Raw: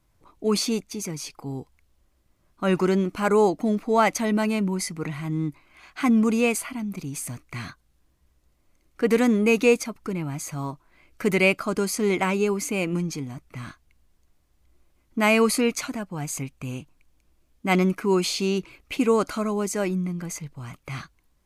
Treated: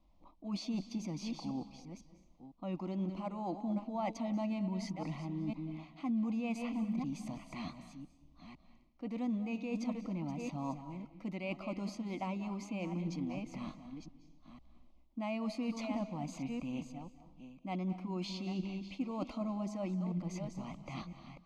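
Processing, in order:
delay that plays each chunk backwards 503 ms, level −13.5 dB
parametric band 1,600 Hz −2.5 dB 0.67 octaves
reversed playback
downward compressor 8 to 1, threshold −33 dBFS, peak gain reduction 19.5 dB
reversed playback
high-frequency loss of the air 220 metres
phaser with its sweep stopped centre 420 Hz, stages 6
on a send: convolution reverb RT60 0.65 s, pre-delay 180 ms, DRR 13 dB
on the sum: level +1.5 dB

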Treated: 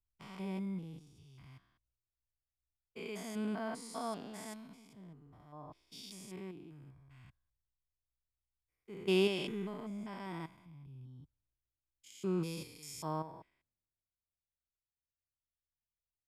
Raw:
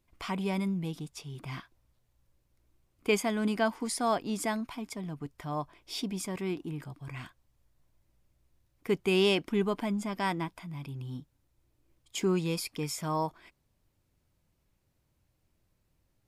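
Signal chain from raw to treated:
spectrum averaged block by block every 200 ms
multiband upward and downward expander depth 70%
level −8.5 dB

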